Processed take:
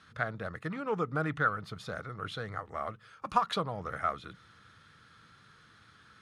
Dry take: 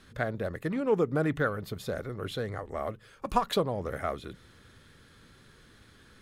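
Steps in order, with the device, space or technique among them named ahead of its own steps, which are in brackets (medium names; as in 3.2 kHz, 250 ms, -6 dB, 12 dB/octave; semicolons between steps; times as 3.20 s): car door speaker (cabinet simulation 100–9100 Hz, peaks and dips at 250 Hz -8 dB, 380 Hz -9 dB, 550 Hz -6 dB, 1.3 kHz +9 dB, 7.6 kHz -7 dB); trim -2 dB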